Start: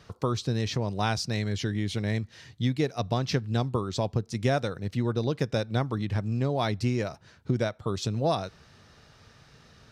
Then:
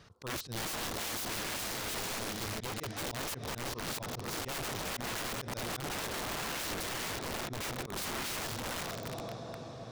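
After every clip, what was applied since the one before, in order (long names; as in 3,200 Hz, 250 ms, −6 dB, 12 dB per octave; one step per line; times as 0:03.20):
feedback delay with all-pass diffusion 474 ms, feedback 61%, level −7 dB
volume swells 143 ms
wrap-around overflow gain 29.5 dB
level −3 dB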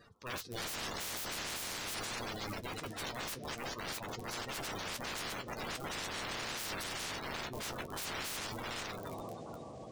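spectral magnitudes quantised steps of 30 dB
flanger 0.46 Hz, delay 8.2 ms, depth 6.3 ms, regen −40%
level +1.5 dB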